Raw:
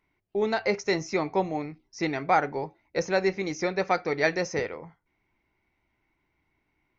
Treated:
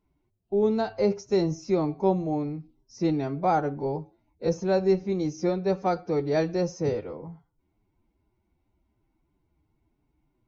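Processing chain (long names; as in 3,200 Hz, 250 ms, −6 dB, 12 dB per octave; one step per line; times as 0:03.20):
parametric band 2,000 Hz −12 dB 0.69 octaves
phase-vocoder stretch with locked phases 1.5×
low-shelf EQ 500 Hz +12 dB
level −4.5 dB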